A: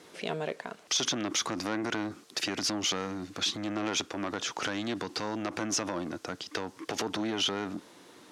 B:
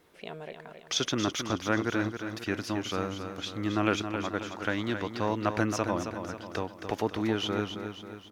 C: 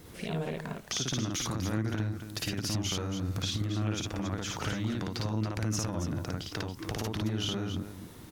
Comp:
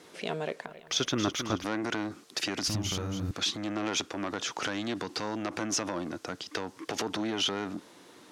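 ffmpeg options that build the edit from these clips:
-filter_complex "[0:a]asplit=3[a][b][c];[a]atrim=end=0.662[d];[1:a]atrim=start=0.658:end=1.642[e];[b]atrim=start=1.638:end=2.682[f];[2:a]atrim=start=2.678:end=3.312[g];[c]atrim=start=3.308[h];[d][e]acrossfade=d=0.004:c1=hsin:c2=hsin[i];[i][f]acrossfade=d=0.004:c1=hsin:c2=hsin[j];[j][g]acrossfade=d=0.004:c1=hsin:c2=hsin[k];[k][h]acrossfade=d=0.004:c1=hsin:c2=hsin"

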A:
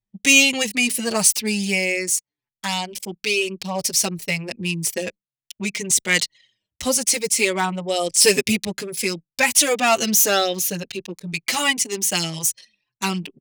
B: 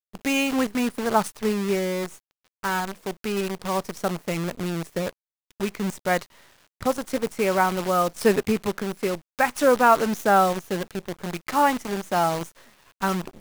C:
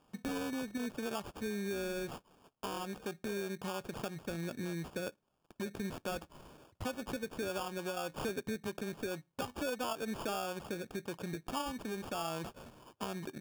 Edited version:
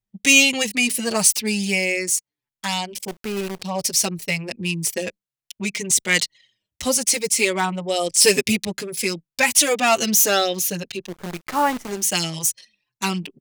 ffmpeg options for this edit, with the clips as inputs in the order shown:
-filter_complex "[1:a]asplit=2[a][b];[0:a]asplit=3[c][d][e];[c]atrim=end=3.082[f];[a]atrim=start=3.078:end=3.622[g];[d]atrim=start=3.618:end=11.19[h];[b]atrim=start=11.03:end=12.04[i];[e]atrim=start=11.88[j];[f][g]acrossfade=d=0.004:c1=hsin:c2=hsin[k];[k][h]acrossfade=d=0.004:c1=hsin:c2=hsin[l];[l][i]acrossfade=d=0.16:c1=tri:c2=tri[m];[m][j]acrossfade=d=0.16:c1=tri:c2=tri"

